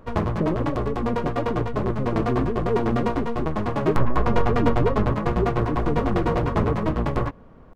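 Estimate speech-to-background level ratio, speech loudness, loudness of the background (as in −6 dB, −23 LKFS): −3.5 dB, −29.0 LKFS, −25.5 LKFS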